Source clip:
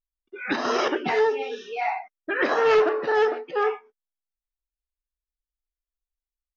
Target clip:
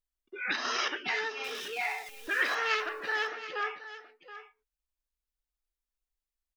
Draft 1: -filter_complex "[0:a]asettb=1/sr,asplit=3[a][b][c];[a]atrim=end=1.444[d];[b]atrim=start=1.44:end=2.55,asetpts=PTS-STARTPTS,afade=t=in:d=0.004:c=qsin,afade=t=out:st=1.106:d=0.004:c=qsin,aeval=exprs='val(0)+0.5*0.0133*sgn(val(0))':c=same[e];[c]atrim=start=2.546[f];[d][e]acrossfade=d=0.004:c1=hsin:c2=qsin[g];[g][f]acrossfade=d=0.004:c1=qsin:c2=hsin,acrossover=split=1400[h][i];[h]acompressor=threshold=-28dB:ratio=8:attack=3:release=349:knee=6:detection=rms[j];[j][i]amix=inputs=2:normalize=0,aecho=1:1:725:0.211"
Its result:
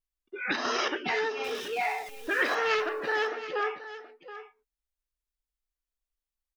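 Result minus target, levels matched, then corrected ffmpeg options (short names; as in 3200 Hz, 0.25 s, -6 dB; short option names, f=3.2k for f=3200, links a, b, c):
compressor: peak gain reduction -9 dB
-filter_complex "[0:a]asettb=1/sr,asplit=3[a][b][c];[a]atrim=end=1.444[d];[b]atrim=start=1.44:end=2.55,asetpts=PTS-STARTPTS,afade=t=in:d=0.004:c=qsin,afade=t=out:st=1.106:d=0.004:c=qsin,aeval=exprs='val(0)+0.5*0.0133*sgn(val(0))':c=same[e];[c]atrim=start=2.546[f];[d][e]acrossfade=d=0.004:c1=hsin:c2=qsin[g];[g][f]acrossfade=d=0.004:c1=qsin:c2=hsin,acrossover=split=1400[h][i];[h]acompressor=threshold=-38.5dB:ratio=8:attack=3:release=349:knee=6:detection=rms[j];[j][i]amix=inputs=2:normalize=0,aecho=1:1:725:0.211"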